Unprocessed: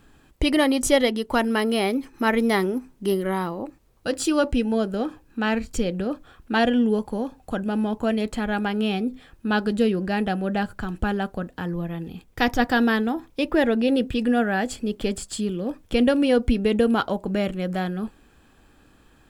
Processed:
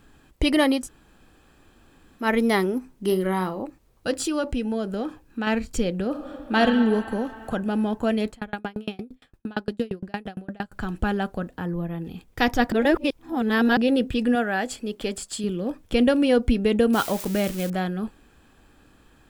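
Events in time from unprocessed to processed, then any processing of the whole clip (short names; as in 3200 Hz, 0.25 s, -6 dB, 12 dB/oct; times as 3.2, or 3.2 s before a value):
0.81–2.23 room tone, crossfade 0.16 s
3.05–3.62 doubler 43 ms -11 dB
4.2–5.47 compressor 2:1, threshold -25 dBFS
6.08–6.59 reverb throw, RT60 2.6 s, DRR 1.5 dB
7.11–7.53 three-band squash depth 70%
8.3–10.72 dB-ramp tremolo decaying 8.7 Hz, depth 34 dB
11.56–12.05 bell 4600 Hz -6.5 dB 2.4 oct
12.72–13.77 reverse
14.35–15.44 low shelf 240 Hz -9 dB
16.93–17.7 switching spikes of -21.5 dBFS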